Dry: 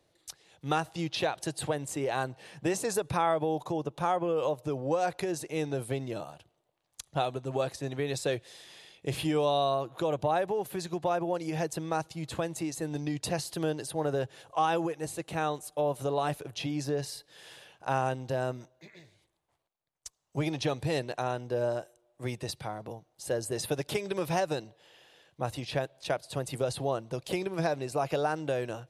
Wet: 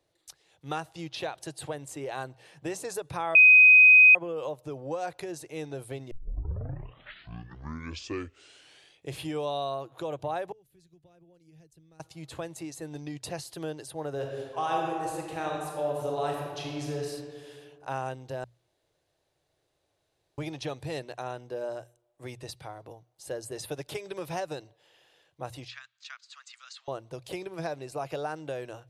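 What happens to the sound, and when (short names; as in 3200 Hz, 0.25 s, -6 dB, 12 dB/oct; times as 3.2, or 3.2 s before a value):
3.35–4.15 bleep 2510 Hz -7 dBFS
6.11 tape start 2.95 s
10.52–12 passive tone stack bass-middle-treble 10-0-1
14.12–17.08 reverb throw, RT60 1.9 s, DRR -1 dB
18.44–20.38 room tone
25.68–26.88 Chebyshev band-pass 1200–7200 Hz, order 4
whole clip: bell 210 Hz -14 dB 0.24 oct; notches 60/120 Hz; gain -4.5 dB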